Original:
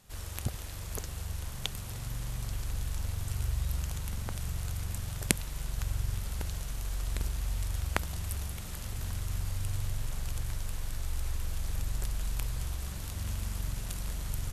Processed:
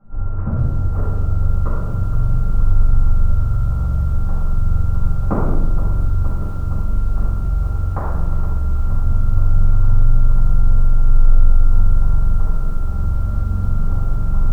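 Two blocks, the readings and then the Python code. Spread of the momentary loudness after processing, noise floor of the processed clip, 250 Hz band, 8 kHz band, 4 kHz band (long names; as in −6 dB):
5 LU, −20 dBFS, +16.5 dB, below −10 dB, below −10 dB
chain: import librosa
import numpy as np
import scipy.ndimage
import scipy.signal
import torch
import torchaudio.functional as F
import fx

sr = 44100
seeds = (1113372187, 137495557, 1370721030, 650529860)

y = np.r_[np.sort(x[:len(x) // 32 * 32].reshape(-1, 32), axis=1).ravel(), x[len(x) // 32 * 32:]]
y = fx.rider(y, sr, range_db=3, speed_s=2.0)
y = scipy.ndimage.gaussian_filter1d(y, 7.8, mode='constant')
y = fx.room_shoebox(y, sr, seeds[0], volume_m3=500.0, walls='mixed', distance_m=7.9)
y = fx.echo_crushed(y, sr, ms=468, feedback_pct=80, bits=7, wet_db=-13)
y = y * 10.0 ** (-1.5 / 20.0)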